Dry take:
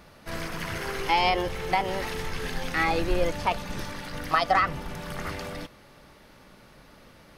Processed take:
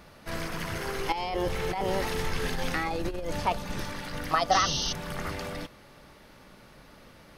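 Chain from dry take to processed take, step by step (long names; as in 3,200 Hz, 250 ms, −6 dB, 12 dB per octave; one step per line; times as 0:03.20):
dynamic equaliser 2,200 Hz, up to −5 dB, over −37 dBFS, Q 0.8
0:01.12–0:03.40: compressor whose output falls as the input rises −29 dBFS, ratio −1
0:04.51–0:04.93: sound drawn into the spectrogram noise 2,700–6,400 Hz −31 dBFS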